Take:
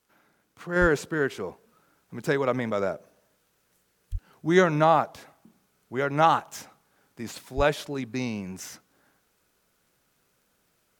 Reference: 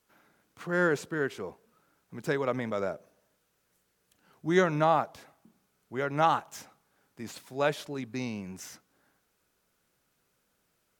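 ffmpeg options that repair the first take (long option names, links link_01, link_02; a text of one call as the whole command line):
ffmpeg -i in.wav -filter_complex "[0:a]adeclick=threshold=4,asplit=3[link_01][link_02][link_03];[link_01]afade=type=out:start_time=0.8:duration=0.02[link_04];[link_02]highpass=frequency=140:width=0.5412,highpass=frequency=140:width=1.3066,afade=type=in:start_time=0.8:duration=0.02,afade=type=out:start_time=0.92:duration=0.02[link_05];[link_03]afade=type=in:start_time=0.92:duration=0.02[link_06];[link_04][link_05][link_06]amix=inputs=3:normalize=0,asplit=3[link_07][link_08][link_09];[link_07]afade=type=out:start_time=4.11:duration=0.02[link_10];[link_08]highpass=frequency=140:width=0.5412,highpass=frequency=140:width=1.3066,afade=type=in:start_time=4.11:duration=0.02,afade=type=out:start_time=4.23:duration=0.02[link_11];[link_09]afade=type=in:start_time=4.23:duration=0.02[link_12];[link_10][link_11][link_12]amix=inputs=3:normalize=0,asplit=3[link_13][link_14][link_15];[link_13]afade=type=out:start_time=7.56:duration=0.02[link_16];[link_14]highpass=frequency=140:width=0.5412,highpass=frequency=140:width=1.3066,afade=type=in:start_time=7.56:duration=0.02,afade=type=out:start_time=7.68:duration=0.02[link_17];[link_15]afade=type=in:start_time=7.68:duration=0.02[link_18];[link_16][link_17][link_18]amix=inputs=3:normalize=0,asetnsamples=nb_out_samples=441:pad=0,asendcmd='0.76 volume volume -4.5dB',volume=0dB" out.wav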